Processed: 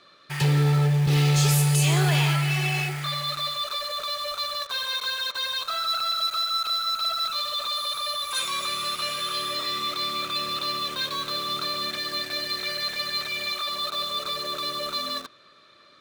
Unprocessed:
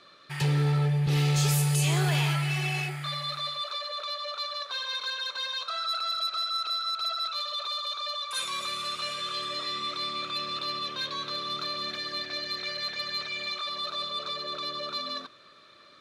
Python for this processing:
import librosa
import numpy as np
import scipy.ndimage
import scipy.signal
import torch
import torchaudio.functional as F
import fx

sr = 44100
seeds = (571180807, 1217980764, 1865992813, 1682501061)

p1 = fx.dmg_tone(x, sr, hz=11000.0, level_db=-48.0, at=(7.75, 9.54), fade=0.02)
p2 = fx.quant_dither(p1, sr, seeds[0], bits=6, dither='none')
y = p1 + F.gain(torch.from_numpy(p2), -4.0).numpy()